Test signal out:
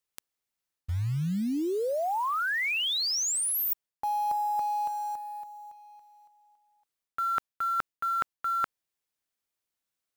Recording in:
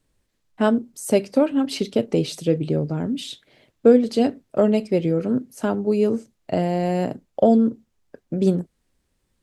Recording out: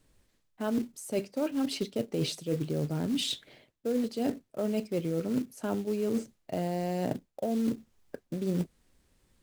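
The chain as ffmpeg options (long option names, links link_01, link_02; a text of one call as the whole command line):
ffmpeg -i in.wav -af "acrusher=bits=5:mode=log:mix=0:aa=0.000001,areverse,acompressor=threshold=-30dB:ratio=12,areverse,volume=3dB" out.wav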